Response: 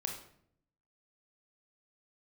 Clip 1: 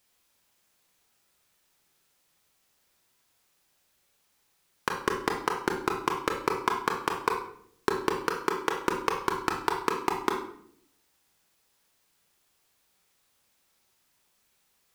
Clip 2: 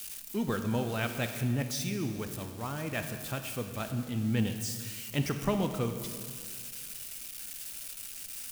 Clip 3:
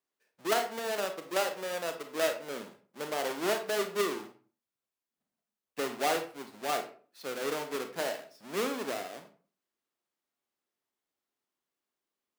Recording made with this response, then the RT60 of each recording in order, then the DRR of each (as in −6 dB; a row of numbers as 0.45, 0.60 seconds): 1; 0.65, 1.9, 0.45 seconds; 1.5, 7.0, 6.5 decibels